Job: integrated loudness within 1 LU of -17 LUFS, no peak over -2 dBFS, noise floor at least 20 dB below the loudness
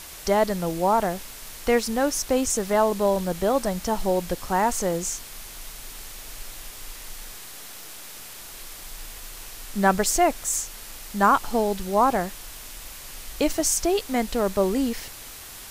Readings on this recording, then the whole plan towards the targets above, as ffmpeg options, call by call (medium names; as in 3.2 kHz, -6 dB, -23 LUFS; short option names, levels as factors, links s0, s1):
noise floor -41 dBFS; noise floor target -44 dBFS; loudness -24.0 LUFS; peak level -5.5 dBFS; loudness target -17.0 LUFS
-> -af "afftdn=nr=6:nf=-41"
-af "volume=2.24,alimiter=limit=0.794:level=0:latency=1"